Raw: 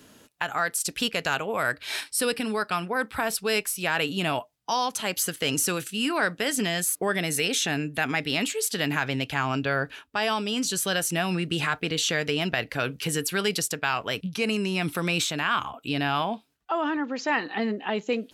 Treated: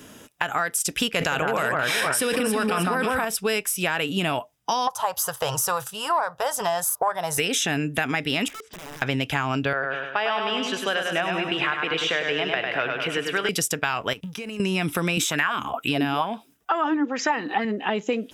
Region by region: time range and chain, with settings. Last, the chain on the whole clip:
0:01.16–0:03.25: delay that swaps between a low-pass and a high-pass 157 ms, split 1,700 Hz, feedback 60%, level −3.5 dB + envelope flattener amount 100%
0:04.87–0:07.38: drawn EQ curve 130 Hz 0 dB, 260 Hz −27 dB, 510 Hz 0 dB, 950 Hz +15 dB, 2,200 Hz −15 dB, 4,400 Hz −2 dB, 8,400 Hz −6 dB, 15,000 Hz +3 dB + highs frequency-modulated by the lows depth 0.13 ms
0:08.48–0:09.02: low-pass filter 1,300 Hz + downward compressor 8 to 1, threshold −42 dBFS + wrap-around overflow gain 40.5 dB
0:09.73–0:13.49: three-way crossover with the lows and the highs turned down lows −14 dB, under 380 Hz, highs −24 dB, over 3,700 Hz + repeating echo 101 ms, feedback 51%, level −5 dB
0:14.13–0:14.60: mu-law and A-law mismatch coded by A + downward compressor 12 to 1, threshold −37 dBFS
0:15.17–0:17.65: high-pass filter 60 Hz + high-shelf EQ 7,800 Hz +9.5 dB + auto-filter bell 2.2 Hz 220–2,000 Hz +13 dB
whole clip: notch filter 4,300 Hz, Q 5.3; downward compressor, threshold −28 dBFS; level +7.5 dB

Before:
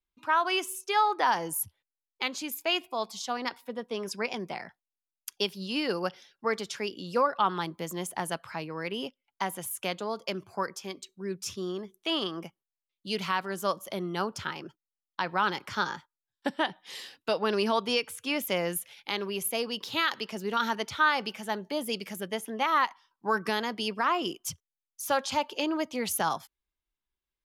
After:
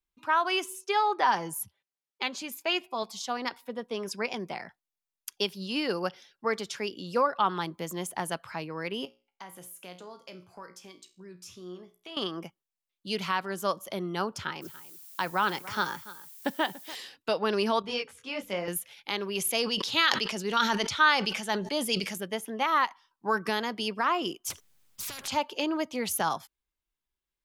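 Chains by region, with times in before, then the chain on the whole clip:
0:00.64–0:03.03: high-pass filter 92 Hz + high-shelf EQ 8,700 Hz −7.5 dB + comb filter 5.1 ms, depth 38%
0:09.05–0:12.17: downward compressor 2 to 1, threshold −40 dBFS + tuned comb filter 60 Hz, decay 0.36 s, mix 70%
0:14.61–0:16.94: single-tap delay 288 ms −17.5 dB + background noise violet −49 dBFS
0:17.82–0:18.68: high-frequency loss of the air 58 metres + hum removal 71.16 Hz, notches 7 + micro pitch shift up and down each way 26 cents
0:19.35–0:22.18: low-pass filter 8,800 Hz + high-shelf EQ 2,400 Hz +8 dB + level that may fall only so fast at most 68 dB per second
0:24.50–0:25.28: bass and treble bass +10 dB, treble 0 dB + downward compressor 2 to 1, threshold −34 dBFS + every bin compressed towards the loudest bin 10 to 1
whole clip: no processing

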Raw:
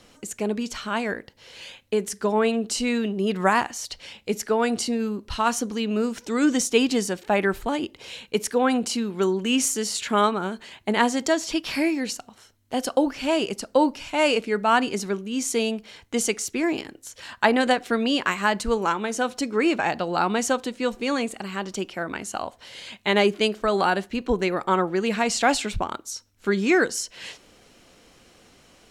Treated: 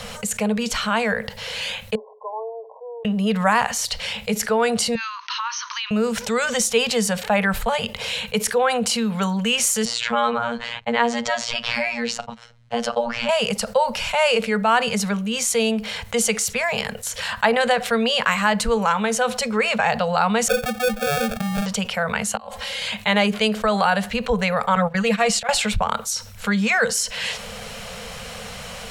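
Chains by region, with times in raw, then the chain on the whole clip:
0:01.95–0:03.05: linear-phase brick-wall band-pass 380–1,100 Hz + first difference
0:04.95–0:05.91: linear-phase brick-wall band-pass 890–6,500 Hz + downward compressor 4 to 1, threshold −37 dBFS
0:09.85–0:13.29: noise gate −49 dBFS, range −25 dB + phases set to zero 118 Hz + high-frequency loss of the air 120 metres
0:20.48–0:21.66: expanding power law on the bin magnitudes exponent 2.1 + sample-rate reduction 1,000 Hz
0:22.35–0:22.82: downward compressor 2.5 to 1, threshold −43 dBFS + comb filter 3.7 ms, depth 88% + gate with flip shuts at −26 dBFS, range −29 dB
0:24.75–0:25.49: noise gate −27 dBFS, range −25 dB + comb filter 5.9 ms, depth 75% + volume swells 429 ms
whole clip: elliptic band-stop filter 220–450 Hz; parametric band 6,000 Hz −3.5 dB 0.77 octaves; envelope flattener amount 50%; level +1 dB

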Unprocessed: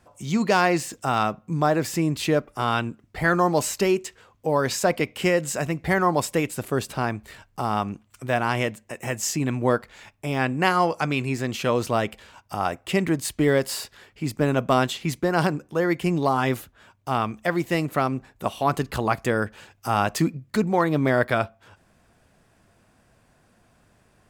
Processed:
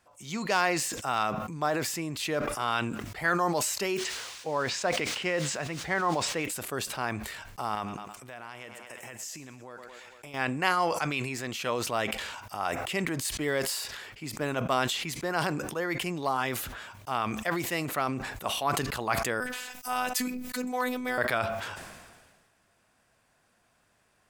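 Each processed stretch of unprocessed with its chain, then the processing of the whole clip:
0:03.96–0:06.44: background noise blue −37 dBFS + high-frequency loss of the air 120 metres
0:07.75–0:10.34: feedback echo with a high-pass in the loop 113 ms, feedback 51%, high-pass 160 Hz, level −16 dB + downward compressor 10 to 1, threshold −32 dBFS
0:19.40–0:21.18: high-shelf EQ 7,000 Hz +11.5 dB + phases set to zero 250 Hz
whole clip: low-shelf EQ 500 Hz −11.5 dB; level that may fall only so fast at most 37 dB per second; level −3.5 dB

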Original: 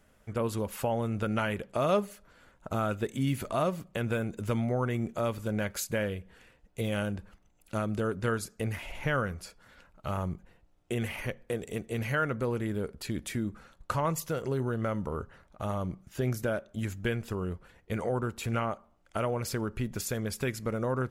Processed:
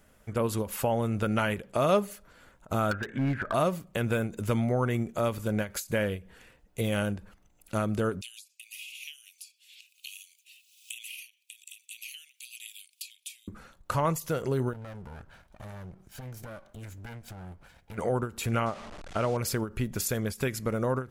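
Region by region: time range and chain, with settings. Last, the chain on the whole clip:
0:02.91–0:03.54: low-pass with resonance 1,600 Hz, resonance Q 13 + hard clipping −25 dBFS
0:08.21–0:13.48: Chebyshev high-pass filter 2,500 Hz, order 6 + multiband upward and downward compressor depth 100%
0:14.73–0:17.98: lower of the sound and its delayed copy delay 1.3 ms + downward compressor 3 to 1, threshold −46 dBFS + highs frequency-modulated by the lows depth 0.23 ms
0:18.66–0:19.37: linear delta modulator 64 kbit/s, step −39.5 dBFS + high-frequency loss of the air 90 metres
whole clip: high-shelf EQ 9,000 Hz +6 dB; every ending faded ahead of time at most 220 dB per second; level +2.5 dB

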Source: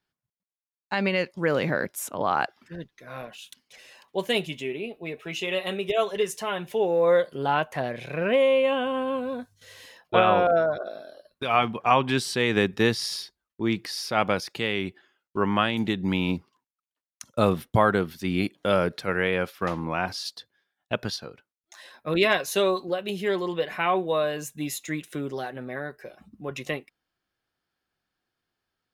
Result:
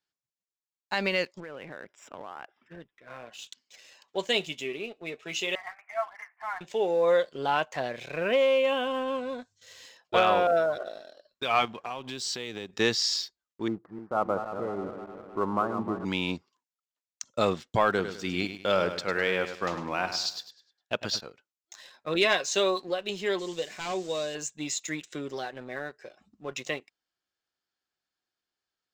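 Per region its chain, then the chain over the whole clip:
0:01.40–0:03.27: Savitzky-Golay smoothing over 25 samples + downward compressor 12 to 1, threshold −33 dBFS
0:05.55–0:06.61: one scale factor per block 5 bits + Chebyshev band-pass filter 690–2,200 Hz, order 5
0:11.65–0:12.75: dynamic equaliser 1,600 Hz, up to −7 dB, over −35 dBFS, Q 1 + downward compressor 4 to 1, threshold −31 dBFS
0:13.68–0:16.05: feedback delay that plays each chunk backwards 154 ms, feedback 74%, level −9 dB + elliptic low-pass filter 1,300 Hz, stop band 60 dB
0:17.88–0:21.21: high-shelf EQ 11,000 Hz −3.5 dB + repeating echo 102 ms, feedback 39%, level −10 dB
0:23.39–0:24.35: linear delta modulator 64 kbit/s, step −40 dBFS + parametric band 1,100 Hz −10 dB 1.7 octaves
whole clip: elliptic low-pass filter 7,600 Hz; bass and treble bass −7 dB, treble +8 dB; leveller curve on the samples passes 1; level −5 dB

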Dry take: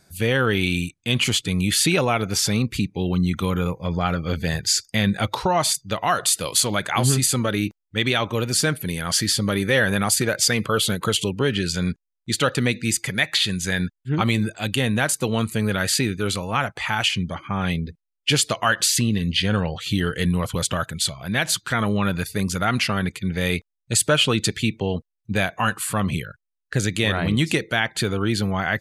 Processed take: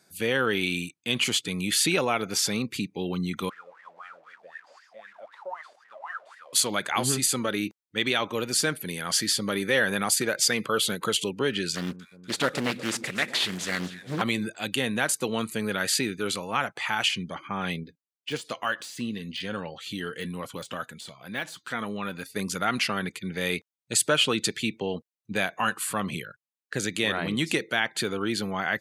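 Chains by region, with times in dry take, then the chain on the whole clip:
0:03.49–0:06.53: linear delta modulator 64 kbit/s, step −25.5 dBFS + tilt shelving filter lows −3.5 dB, about 890 Hz + LFO wah 3.9 Hz 560–1,900 Hz, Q 15
0:11.75–0:14.22: variable-slope delta modulation 64 kbit/s + delay that swaps between a low-pass and a high-pass 121 ms, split 1,000 Hz, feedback 75%, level −13.5 dB + highs frequency-modulated by the lows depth 0.64 ms
0:17.83–0:22.36: de-essing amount 60% + flanger 1.1 Hz, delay 3.4 ms, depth 1 ms, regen +76%
whole clip: high-pass filter 220 Hz 12 dB per octave; parametric band 640 Hz −2 dB 0.37 octaves; level −3.5 dB

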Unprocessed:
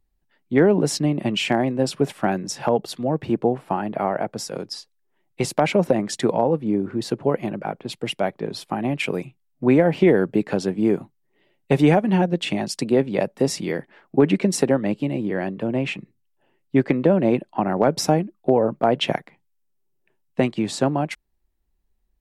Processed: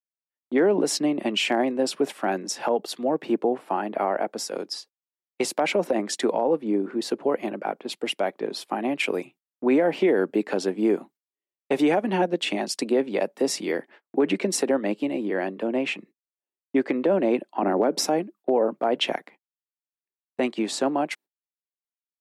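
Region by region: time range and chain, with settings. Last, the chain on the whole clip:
0:17.62–0:18.05: high-pass filter 210 Hz 24 dB per octave + low-shelf EQ 350 Hz +11.5 dB
whole clip: noise gate −45 dBFS, range −35 dB; high-pass filter 250 Hz 24 dB per octave; brickwall limiter −12.5 dBFS

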